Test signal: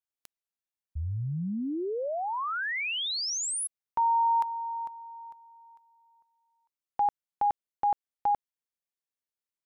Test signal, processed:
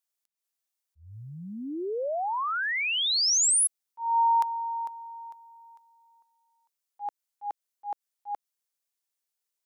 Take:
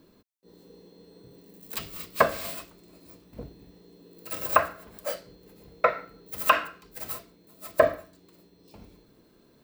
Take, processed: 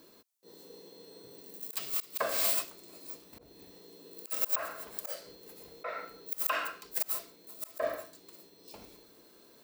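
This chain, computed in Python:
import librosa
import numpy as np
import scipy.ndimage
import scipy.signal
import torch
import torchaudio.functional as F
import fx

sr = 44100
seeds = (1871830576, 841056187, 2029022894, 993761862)

y = fx.auto_swell(x, sr, attack_ms=222.0)
y = fx.bass_treble(y, sr, bass_db=-14, treble_db=7)
y = y * librosa.db_to_amplitude(2.5)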